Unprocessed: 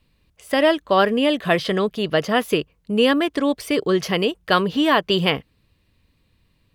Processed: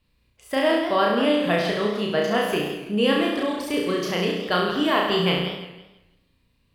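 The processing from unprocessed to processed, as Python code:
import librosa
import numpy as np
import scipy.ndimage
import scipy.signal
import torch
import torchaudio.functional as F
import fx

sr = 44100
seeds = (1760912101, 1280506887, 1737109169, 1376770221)

y = fx.room_flutter(x, sr, wall_m=5.8, rt60_s=0.85)
y = fx.echo_warbled(y, sr, ms=164, feedback_pct=31, rate_hz=2.8, cents=166, wet_db=-11.0)
y = y * 10.0 ** (-6.5 / 20.0)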